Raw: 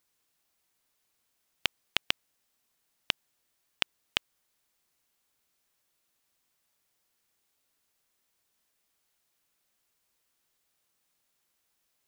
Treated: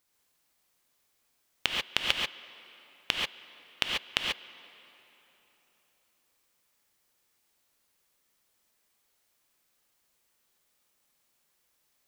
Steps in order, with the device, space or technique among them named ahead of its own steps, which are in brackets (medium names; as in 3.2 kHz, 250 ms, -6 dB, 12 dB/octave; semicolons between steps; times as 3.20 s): gated-style reverb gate 160 ms rising, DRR -1 dB; filtered reverb send (on a send at -16 dB: high-pass 210 Hz 12 dB/octave + low-pass 4.5 kHz + reverberation RT60 3.8 s, pre-delay 114 ms)